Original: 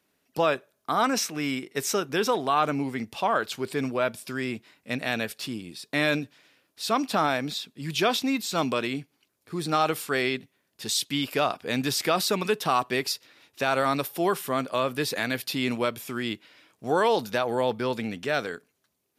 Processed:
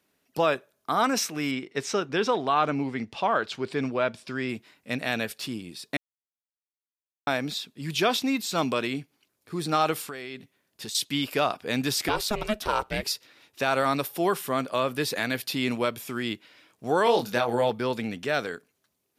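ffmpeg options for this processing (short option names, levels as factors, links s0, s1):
-filter_complex "[0:a]asettb=1/sr,asplit=3[s0][s1][s2];[s0]atrim=end=1.514[s3];[s1]atrim=start=1.51:end=4.49,asetpts=PTS-STARTPTS,afade=t=in:d=0.004:c=qsin,afade=t=out:st=2.976:d=0.004:c=qsin,lowpass=5200[s4];[s2]atrim=start=4.486[s5];[s3][s4]acrossfade=d=0.004:c1=hsin:c2=qsin[s6];[s6][s5]acrossfade=d=0.004:c1=qsin:c2=hsin,asettb=1/sr,asplit=3[s7][s8][s9];[s7]atrim=end=10.014[s10];[s8]atrim=start=10.01:end=10.95,asetpts=PTS-STARTPTS,afade=t=in:d=0.004:c=qsin,afade=t=out:st=0.936:d=0.004:c=qsin,acompressor=threshold=0.0224:ratio=8:attack=3.2:release=140:knee=1:detection=peak[s11];[s9]atrim=start=10.946[s12];[s10][s11]acrossfade=d=0.004:c1=hsin:c2=qsin[s13];[s13][s12]acrossfade=d=0.004:c1=qsin:c2=hsin,asettb=1/sr,asplit=3[s14][s15][s16];[s14]atrim=end=12.084[s17];[s15]atrim=start=12.08:end=13.03,asetpts=PTS-STARTPTS,afade=t=in:d=0.004:c=qsin,afade=t=out:st=0.946:d=0.004:c=qsin,aeval=exprs='val(0)*sin(2*PI*210*n/s)':c=same[s18];[s16]atrim=start=13.026[s19];[s17][s18]acrossfade=d=0.004:c1=hsin:c2=qsin[s20];[s20][s19]acrossfade=d=0.004:c1=qsin:c2=hsin,asettb=1/sr,asplit=3[s21][s22][s23];[s21]atrim=end=17.044[s24];[s22]atrim=start=17.04:end=17.7,asetpts=PTS-STARTPTS,afade=t=in:d=0.004:c=qsin,afade=t=out:st=0.656:d=0.004:c=qsin,asplit=2[s25][s26];[s26]adelay=25,volume=0.562[s27];[s25][s27]amix=inputs=2:normalize=0,atrim=end_sample=29106[s28];[s23]atrim=start=17.696[s29];[s24][s28]acrossfade=d=0.004:c1=hsin:c2=qsin[s30];[s30][s29]acrossfade=d=0.004:c1=qsin:c2=hsin,asplit=3[s31][s32][s33];[s31]atrim=end=5.97,asetpts=PTS-STARTPTS,afade=t=out:st=5.966:d=0.004:c=hsin[s34];[s32]atrim=start=5.97:end=7.27,asetpts=PTS-STARTPTS,volume=0[s35];[s33]atrim=start=7.27,asetpts=PTS-STARTPTS,afade=t=in:d=0.004:c=hsin[s36];[s34][s35][s36]concat=n=3:v=0:a=1"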